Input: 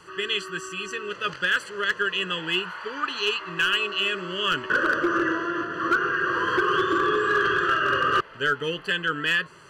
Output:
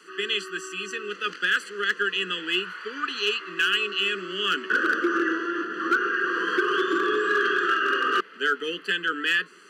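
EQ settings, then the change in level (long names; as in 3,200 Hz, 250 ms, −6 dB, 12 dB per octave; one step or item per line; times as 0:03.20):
Butterworth high-pass 190 Hz 72 dB per octave
flat-topped bell 750 Hz −14.5 dB 1.1 octaves
0.0 dB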